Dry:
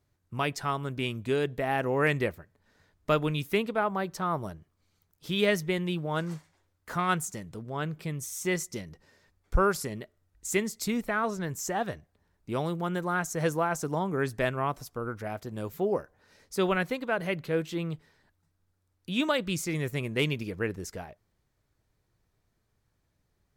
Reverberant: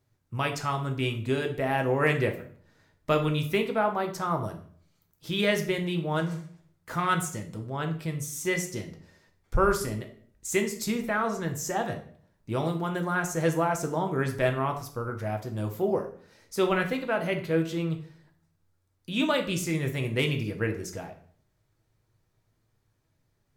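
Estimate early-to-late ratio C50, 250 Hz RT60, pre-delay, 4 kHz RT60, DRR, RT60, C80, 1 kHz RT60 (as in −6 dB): 10.5 dB, 0.65 s, 3 ms, 0.40 s, 4.0 dB, 0.50 s, 14.0 dB, 0.50 s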